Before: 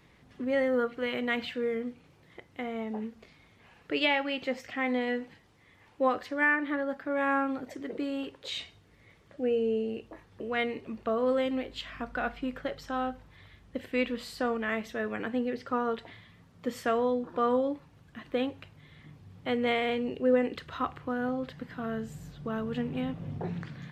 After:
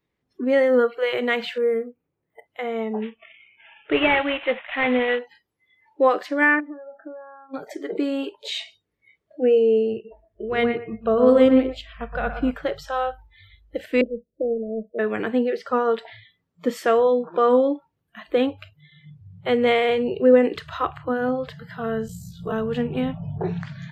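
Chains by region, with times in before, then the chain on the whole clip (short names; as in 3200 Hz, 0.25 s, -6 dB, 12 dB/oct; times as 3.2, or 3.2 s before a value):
1.58–2.46 air absorption 380 m + decimation joined by straight lines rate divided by 4×
3.02–5.19 CVSD 16 kbps + high shelf 2400 Hz +10 dB
6.6–7.54 compressor 16:1, threshold -38 dBFS + band-pass 320 Hz, Q 0.67
9.93–12.51 low shelf 240 Hz +10 dB + analogue delay 0.118 s, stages 2048, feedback 31%, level -6 dB + upward expander, over -40 dBFS
14.01–14.99 G.711 law mismatch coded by A + elliptic low-pass 600 Hz
22.07–22.52 high shelf 5400 Hz +7 dB + ring modulator 29 Hz + doubler 23 ms -2.5 dB
whole clip: bell 390 Hz +5.5 dB 0.96 oct; spectral noise reduction 27 dB; gain +7 dB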